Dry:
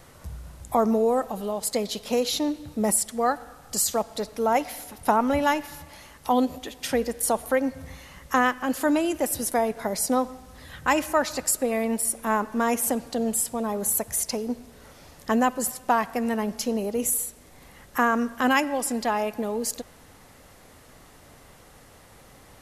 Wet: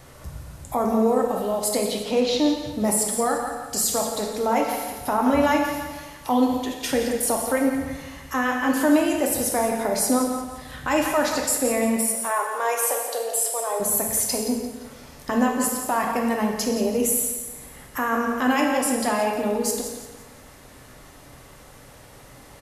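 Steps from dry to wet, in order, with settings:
0:01.81–0:02.39: low-pass filter 4,300 Hz 12 dB per octave
repeating echo 173 ms, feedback 40%, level −12 dB
brickwall limiter −15 dBFS, peak gain reduction 8.5 dB
0:11.98–0:13.80: Butterworth high-pass 430 Hz 36 dB per octave
reverb whose tail is shaped and stops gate 350 ms falling, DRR 1 dB
level +1.5 dB

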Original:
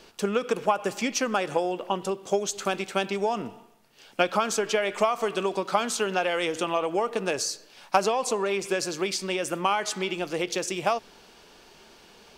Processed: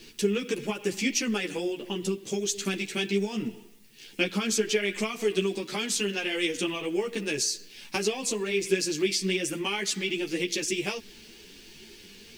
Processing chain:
flat-topped bell 870 Hz −16 dB
in parallel at −2 dB: downward compressor, threshold −37 dBFS, peak gain reduction 14.5 dB
on the sum: background noise blue −64 dBFS
string-ensemble chorus
level +3 dB

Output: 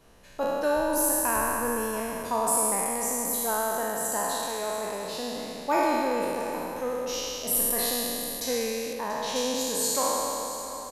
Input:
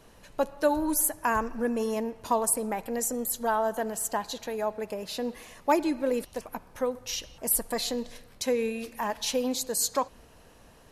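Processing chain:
peak hold with a decay on every bin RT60 2.98 s
0:08.93–0:09.36: high-shelf EQ 4,700 Hz −8.5 dB
on a send: single-tap delay 686 ms −14.5 dB
on the sum: level −5 dB

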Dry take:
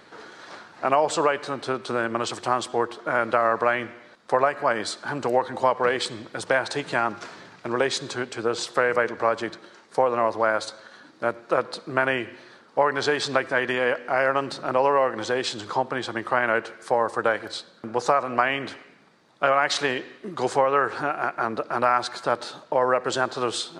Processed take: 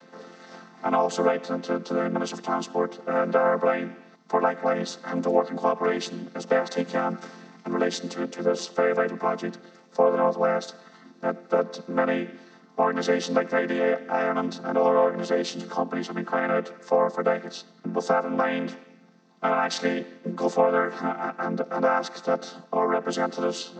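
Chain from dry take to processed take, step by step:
channel vocoder with a chord as carrier major triad, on F3
parametric band 5,800 Hz +9.5 dB 0.88 octaves

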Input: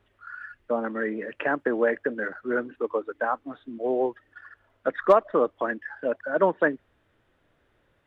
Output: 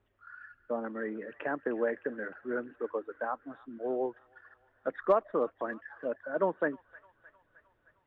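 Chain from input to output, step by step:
high-shelf EQ 2,500 Hz −9 dB
on a send: delay with a high-pass on its return 308 ms, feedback 62%, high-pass 1,600 Hz, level −15 dB
on the sum: level −7 dB

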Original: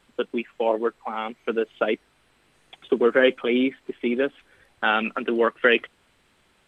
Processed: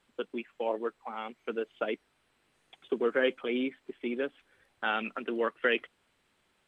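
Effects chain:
low-shelf EQ 120 Hz −5 dB
level −9 dB

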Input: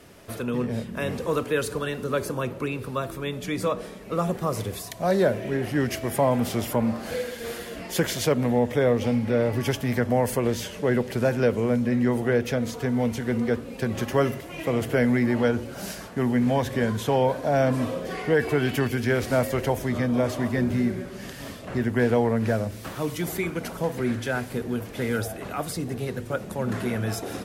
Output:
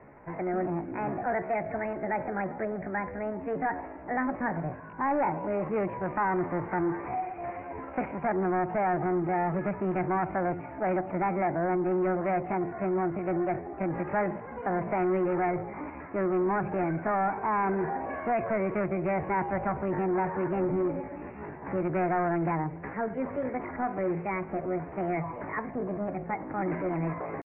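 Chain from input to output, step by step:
soft clipping −21.5 dBFS, distortion −11 dB
pitch shifter +7 semitones
Butterworth low-pass 2,200 Hz 72 dB per octave
level −1 dB

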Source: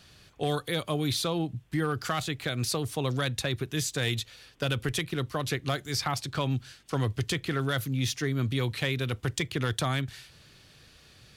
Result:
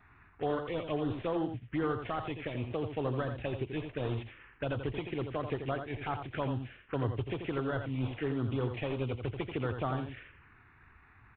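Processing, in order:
variable-slope delta modulation 16 kbit/s
parametric band 160 Hz −9 dB 0.9 octaves
phaser swept by the level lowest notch 510 Hz, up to 2,400 Hz, full sweep at −28 dBFS
single-tap delay 85 ms −7.5 dB

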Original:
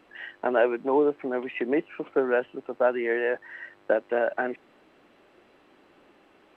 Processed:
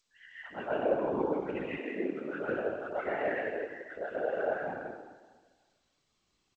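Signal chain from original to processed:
spectral dynamics exaggerated over time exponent 1.5
flanger 1.3 Hz, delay 4.4 ms, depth 6.5 ms, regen −27%
0:00.48–0:01.05: low-pass filter 1,900 Hz 6 dB per octave
three-band delay without the direct sound highs, lows, mids 70/110 ms, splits 390/1,200 Hz
dense smooth reverb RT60 1.5 s, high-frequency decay 0.8×, pre-delay 115 ms, DRR −7 dB
random phases in short frames
0:01.76–0:02.45: high-pass filter 300 Hz → 120 Hz 24 dB per octave
level −6.5 dB
G.722 64 kbit/s 16,000 Hz

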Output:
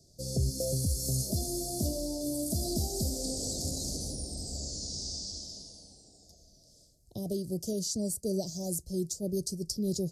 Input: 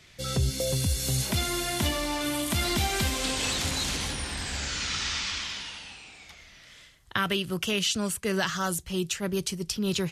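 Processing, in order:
Chebyshev band-stop filter 660–4,700 Hz, order 4
level −2.5 dB

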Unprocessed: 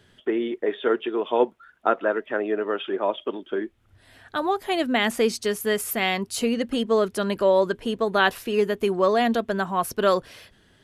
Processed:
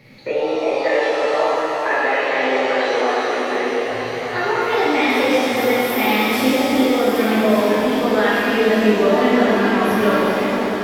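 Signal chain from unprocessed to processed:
pitch glide at a constant tempo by +5 semitones ending unshifted
downward compressor 2.5 to 1, threshold −35 dBFS, peak gain reduction 13.5 dB
graphic EQ with 10 bands 125 Hz +11 dB, 250 Hz +4 dB, 500 Hz +4 dB, 2,000 Hz +8 dB, 8,000 Hz −8 dB
on a send: echo machine with several playback heads 399 ms, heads first and third, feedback 58%, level −10 dB
on the sum: reverb with rising layers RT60 2.3 s, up +7 semitones, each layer −8 dB, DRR −9 dB
level +2 dB

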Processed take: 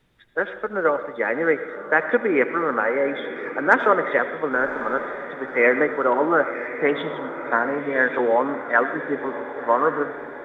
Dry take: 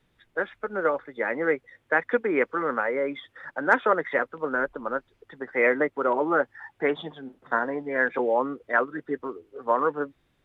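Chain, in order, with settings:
feedback delay with all-pass diffusion 1,086 ms, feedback 56%, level −12 dB
on a send at −11 dB: convolution reverb RT60 0.90 s, pre-delay 68 ms
on the sum: level +4 dB

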